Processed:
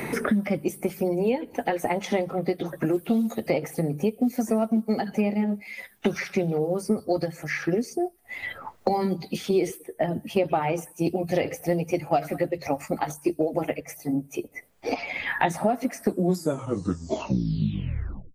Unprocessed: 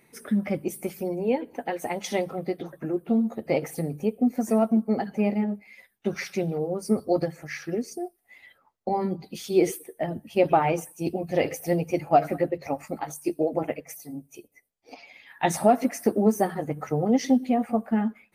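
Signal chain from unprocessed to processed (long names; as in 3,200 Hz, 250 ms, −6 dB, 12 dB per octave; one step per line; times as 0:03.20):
turntable brake at the end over 2.42 s
multiband upward and downward compressor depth 100%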